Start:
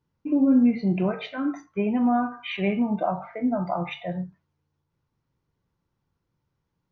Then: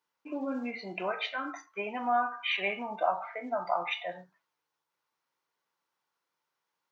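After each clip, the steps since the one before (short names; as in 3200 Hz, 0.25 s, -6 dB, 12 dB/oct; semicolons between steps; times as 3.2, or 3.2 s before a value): HPF 820 Hz 12 dB/oct; gain +2.5 dB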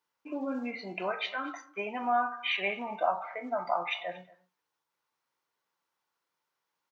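echo 0.231 s -22.5 dB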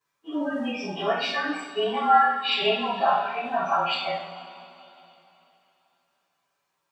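inharmonic rescaling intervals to 108%; two-slope reverb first 0.47 s, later 3.3 s, from -18 dB, DRR -6.5 dB; gain +3.5 dB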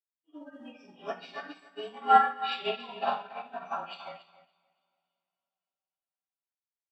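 feedback echo 0.281 s, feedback 36%, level -7 dB; upward expander 2.5:1, over -37 dBFS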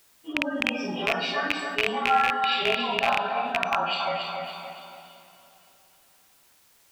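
rattling part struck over -49 dBFS, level -17 dBFS; fast leveller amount 70%; gain -4 dB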